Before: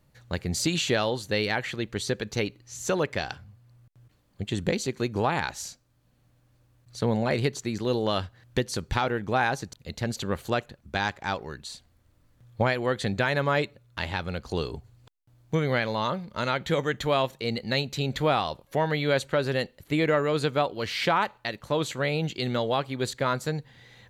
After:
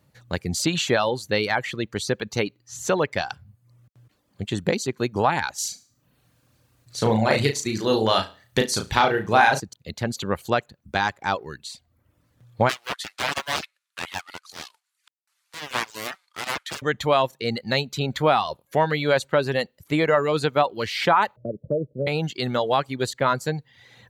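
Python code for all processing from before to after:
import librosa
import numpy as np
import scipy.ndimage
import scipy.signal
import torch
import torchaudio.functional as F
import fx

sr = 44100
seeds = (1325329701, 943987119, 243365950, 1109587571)

y = fx.chain(x, sr, fx.high_shelf(hz=2300.0, db=6.0),
    fx.room_flutter(wall_m=6.2, rt60_s=0.45), at=(5.58, 9.6))
y = fx.chain(y, sr, fx.cvsd(bps=64000),
    fx.highpass(hz=1200.0, slope=24),
    fx.doppler_dist(depth_ms=0.91), at=(12.69, 16.82))
y = fx.chain(y, sr, fx.cheby_ripple(hz=630.0, ripple_db=3),
    fx.band_squash(depth_pct=70), at=(21.36, 22.07))
y = scipy.signal.sosfilt(scipy.signal.butter(2, 76.0, 'highpass', fs=sr, output='sos'), y)
y = fx.dereverb_blind(y, sr, rt60_s=0.56)
y = fx.dynamic_eq(y, sr, hz=940.0, q=0.96, threshold_db=-37.0, ratio=4.0, max_db=4)
y = F.gain(torch.from_numpy(y), 3.0).numpy()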